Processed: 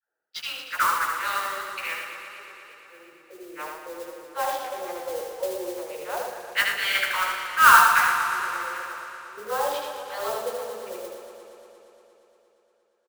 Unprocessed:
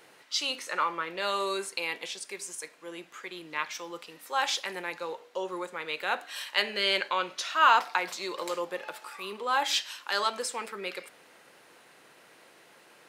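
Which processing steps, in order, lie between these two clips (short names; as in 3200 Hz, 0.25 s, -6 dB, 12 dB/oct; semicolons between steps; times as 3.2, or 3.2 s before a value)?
Wiener smoothing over 41 samples; gate -55 dBFS, range -18 dB; low-pass opened by the level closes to 1300 Hz, open at -25.5 dBFS; tilt +2 dB/oct; in parallel at -1.5 dB: vocal rider within 4 dB 2 s; on the sum: dispersion lows, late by 0.125 s, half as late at 510 Hz; LFO band-pass square 0.16 Hz 540–1500 Hz; modulation noise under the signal 12 dB; doubler 14 ms -7 dB; on a send: feedback echo 77 ms, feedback 29%, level -4 dB; on the sum: warbling echo 0.117 s, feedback 80%, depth 64 cents, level -9 dB; gain +2.5 dB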